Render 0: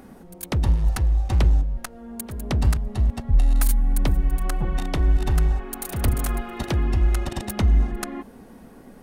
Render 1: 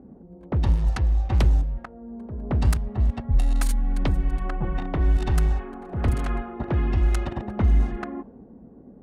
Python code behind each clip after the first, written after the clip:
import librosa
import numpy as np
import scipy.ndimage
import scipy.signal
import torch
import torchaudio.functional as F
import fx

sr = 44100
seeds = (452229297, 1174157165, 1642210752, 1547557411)

y = scipy.signal.sosfilt(scipy.signal.butter(2, 40.0, 'highpass', fs=sr, output='sos'), x)
y = fx.env_lowpass(y, sr, base_hz=420.0, full_db=-14.5)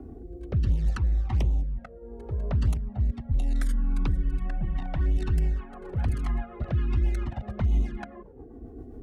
y = fx.env_flanger(x, sr, rest_ms=2.9, full_db=-14.0)
y = fx.rotary_switch(y, sr, hz=0.7, then_hz=7.5, switch_at_s=4.7)
y = fx.band_squash(y, sr, depth_pct=70)
y = y * librosa.db_to_amplitude(-2.5)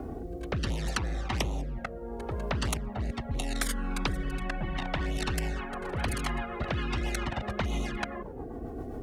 y = fx.spectral_comp(x, sr, ratio=2.0)
y = y * librosa.db_to_amplitude(1.0)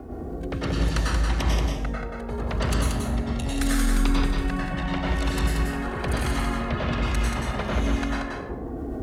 y = x + 10.0 ** (-4.5 / 20.0) * np.pad(x, (int(181 * sr / 1000.0), 0))[:len(x)]
y = fx.rev_plate(y, sr, seeds[0], rt60_s=0.62, hf_ratio=0.8, predelay_ms=85, drr_db=-4.0)
y = y * librosa.db_to_amplitude(-1.5)